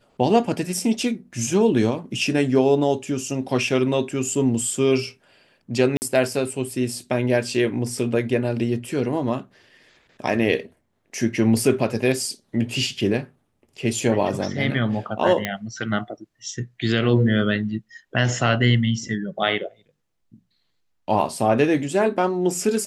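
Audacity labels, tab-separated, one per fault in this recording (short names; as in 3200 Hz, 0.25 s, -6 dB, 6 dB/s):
5.970000	6.020000	gap 49 ms
15.450000	15.450000	pop -9 dBFS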